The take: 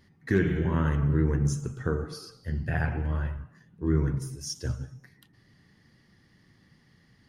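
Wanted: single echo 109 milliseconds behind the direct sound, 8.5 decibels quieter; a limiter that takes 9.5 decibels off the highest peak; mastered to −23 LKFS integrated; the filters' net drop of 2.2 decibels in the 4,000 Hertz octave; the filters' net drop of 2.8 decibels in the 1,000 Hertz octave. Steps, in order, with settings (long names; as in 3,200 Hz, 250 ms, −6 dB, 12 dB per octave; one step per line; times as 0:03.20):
parametric band 1,000 Hz −3.5 dB
parametric band 4,000 Hz −3.5 dB
brickwall limiter −22 dBFS
single-tap delay 109 ms −8.5 dB
level +10 dB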